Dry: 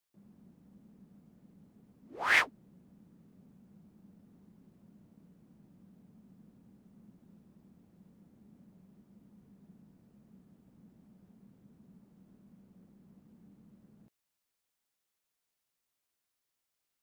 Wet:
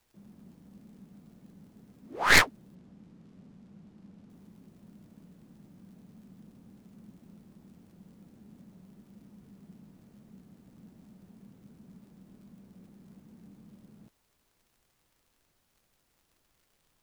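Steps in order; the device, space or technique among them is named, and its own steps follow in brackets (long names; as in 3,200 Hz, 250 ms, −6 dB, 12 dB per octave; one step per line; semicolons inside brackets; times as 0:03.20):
record under a worn stylus (stylus tracing distortion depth 0.18 ms; surface crackle; pink noise bed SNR 37 dB)
0:02.75–0:04.30: Bessel low-pass filter 5,400 Hz
level +6 dB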